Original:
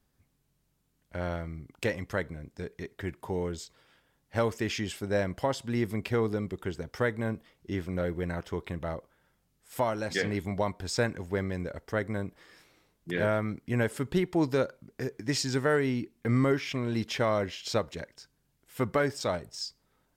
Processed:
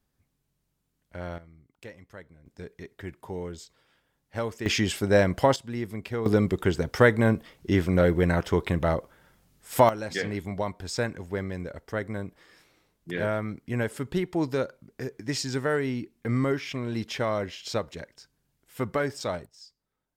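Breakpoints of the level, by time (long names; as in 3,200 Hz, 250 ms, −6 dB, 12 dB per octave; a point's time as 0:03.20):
−3 dB
from 0:01.38 −14 dB
from 0:02.46 −3 dB
from 0:04.66 +8 dB
from 0:05.56 −3 dB
from 0:06.26 +10 dB
from 0:09.89 −0.5 dB
from 0:19.46 −13 dB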